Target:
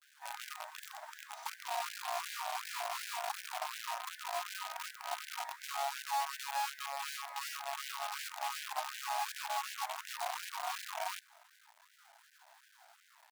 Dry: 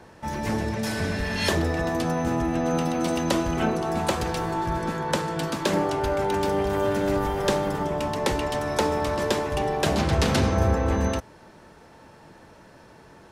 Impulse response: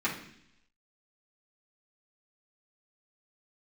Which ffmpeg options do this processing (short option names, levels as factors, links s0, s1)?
-filter_complex "[0:a]asplit=2[s0][s1];[1:a]atrim=start_sample=2205,adelay=76[s2];[s1][s2]afir=irnorm=-1:irlink=0,volume=0.0266[s3];[s0][s3]amix=inputs=2:normalize=0,tremolo=f=200:d=0.974,asetrate=62367,aresample=44100,atempo=0.707107,adynamicequalizer=threshold=0.00794:dfrequency=1600:dqfactor=1.4:tfrequency=1600:tqfactor=1.4:attack=5:release=100:ratio=0.375:range=1.5:mode=boostabove:tftype=bell,flanger=delay=1.1:depth=7.3:regen=-9:speed=0.16:shape=sinusoidal,acrossover=split=110|680|1400[s4][s5][s6][s7];[s4]acompressor=threshold=0.00178:ratio=4[s8];[s5]acompressor=threshold=0.00562:ratio=4[s9];[s6]acompressor=threshold=0.0112:ratio=4[s10];[s7]acompressor=threshold=0.00447:ratio=4[s11];[s8][s9][s10][s11]amix=inputs=4:normalize=0,firequalizer=gain_entry='entry(220,0);entry(470,-22);entry(690,12);entry(2100,-16);entry(3600,-1)':delay=0.05:min_phase=1,acrusher=bits=6:dc=4:mix=0:aa=0.000001,afftfilt=real='re*gte(b*sr/1024,550*pow(1500/550,0.5+0.5*sin(2*PI*2.7*pts/sr)))':imag='im*gte(b*sr/1024,550*pow(1500/550,0.5+0.5*sin(2*PI*2.7*pts/sr)))':win_size=1024:overlap=0.75,volume=0.596"